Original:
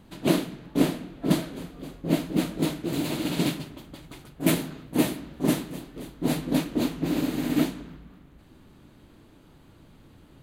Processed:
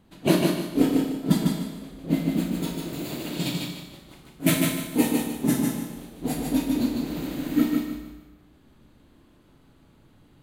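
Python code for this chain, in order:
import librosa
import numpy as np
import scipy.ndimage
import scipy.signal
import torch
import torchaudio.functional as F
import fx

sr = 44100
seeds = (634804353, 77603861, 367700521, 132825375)

y = fx.noise_reduce_blind(x, sr, reduce_db=9)
y = fx.echo_feedback(y, sr, ms=150, feedback_pct=27, wet_db=-4.0)
y = fx.rev_schroeder(y, sr, rt60_s=0.92, comb_ms=30, drr_db=5.0)
y = y * librosa.db_to_amplitude(2.5)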